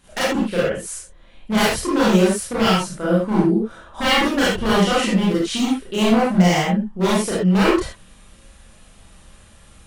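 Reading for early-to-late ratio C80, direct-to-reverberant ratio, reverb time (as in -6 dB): 4.0 dB, -8.0 dB, no single decay rate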